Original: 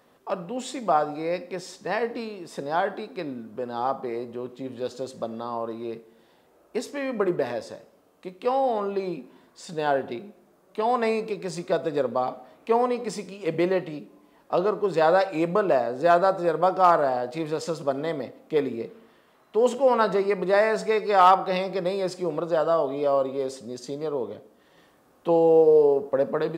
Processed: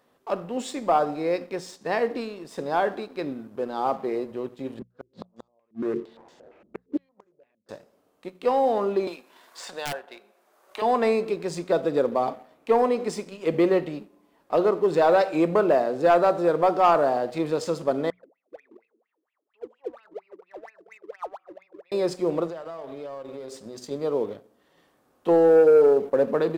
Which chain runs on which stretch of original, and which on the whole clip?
4.79–7.69 s: companding laws mixed up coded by mu + inverted gate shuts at -22 dBFS, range -38 dB + step-sequenced low-pass 8.7 Hz 210–6600 Hz
9.07–10.82 s: high-pass 760 Hz + integer overflow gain 19 dB + three bands compressed up and down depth 70%
18.10–21.92 s: Chebyshev high-pass 190 Hz + compression 1.5:1, threshold -30 dBFS + wah-wah 4.3 Hz 300–2700 Hz, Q 16
22.46–23.91 s: hum notches 50/100/150/200/250/300/350/400 Hz + compression 10:1, threshold -33 dBFS
whole clip: hum notches 60/120/180 Hz; dynamic bell 340 Hz, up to +4 dB, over -32 dBFS, Q 1; waveshaping leveller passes 1; trim -3.5 dB

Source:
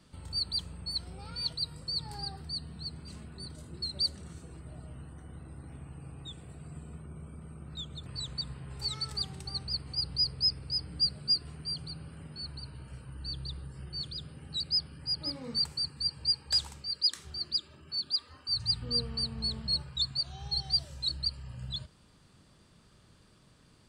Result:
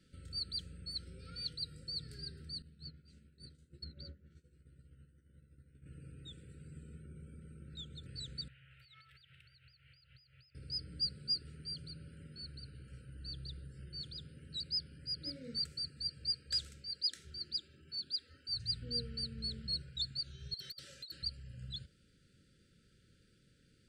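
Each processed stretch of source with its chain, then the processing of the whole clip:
2.62–5.86 s: expander -37 dBFS + doubling 14 ms -3.5 dB + low-pass that closes with the level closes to 1.6 kHz, closed at -32 dBFS
8.48–10.55 s: high-pass 420 Hz 6 dB/octave + compression 4:1, threshold -44 dBFS + FFT filter 130 Hz 0 dB, 200 Hz -23 dB, 380 Hz -25 dB, 600 Hz -8 dB, 850 Hz -7 dB, 2.9 kHz +6 dB, 4.4 kHz -15 dB, 6.6 kHz -29 dB, 13 kHz -7 dB
20.54–21.23 s: frequency weighting A + compressor with a negative ratio -37 dBFS, ratio -0.5 + overload inside the chain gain 34 dB
whole clip: FFT band-reject 580–1300 Hz; treble shelf 7.7 kHz -4.5 dB; trim -6.5 dB

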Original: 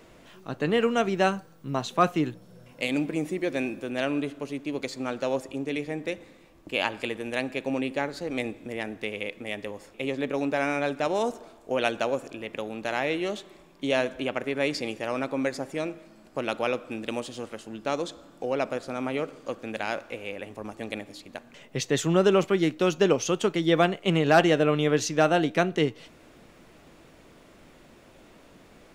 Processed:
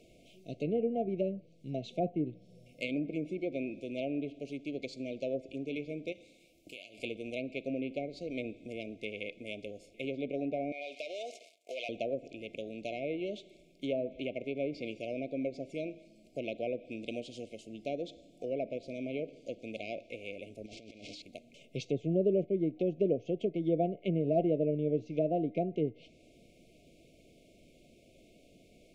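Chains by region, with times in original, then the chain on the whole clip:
6.12–6.99 s: tilt EQ +2 dB/octave + compression, threshold -37 dBFS + doubling 32 ms -12 dB
10.72–11.89 s: waveshaping leveller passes 3 + high-pass 1 kHz + compression 2.5:1, threshold -29 dBFS
20.66–21.22 s: zero-crossing glitches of -21.5 dBFS + Gaussian low-pass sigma 2 samples + compressor with a negative ratio -43 dBFS
whole clip: low-pass that closes with the level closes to 820 Hz, closed at -20.5 dBFS; FFT band-reject 730–2100 Hz; trim -7 dB

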